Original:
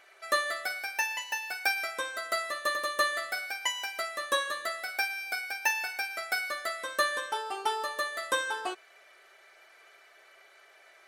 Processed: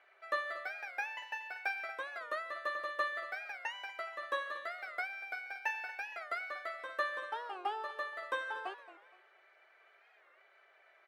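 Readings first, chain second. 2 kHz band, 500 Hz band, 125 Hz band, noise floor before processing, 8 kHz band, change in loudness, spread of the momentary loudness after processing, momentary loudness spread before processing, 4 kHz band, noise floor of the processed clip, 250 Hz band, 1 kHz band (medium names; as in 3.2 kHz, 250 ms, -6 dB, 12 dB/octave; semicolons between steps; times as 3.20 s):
-7.5 dB, -7.0 dB, no reading, -58 dBFS, -25.0 dB, -8.0 dB, 5 LU, 5 LU, -15.0 dB, -66 dBFS, -10.5 dB, -6.5 dB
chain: three-band isolator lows -13 dB, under 340 Hz, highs -21 dB, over 3.1 kHz; feedback delay 235 ms, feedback 34%, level -15 dB; warped record 45 rpm, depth 160 cents; trim -6.5 dB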